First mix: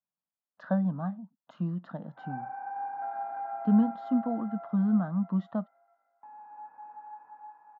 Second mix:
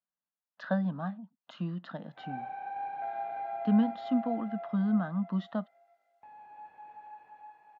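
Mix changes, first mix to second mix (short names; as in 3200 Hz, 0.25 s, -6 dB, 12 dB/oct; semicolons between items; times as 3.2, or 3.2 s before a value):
background: remove speaker cabinet 270–2200 Hz, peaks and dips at 270 Hz +5 dB, 390 Hz -9 dB, 660 Hz -5 dB, 990 Hz +8 dB, 1400 Hz +10 dB; master: add weighting filter D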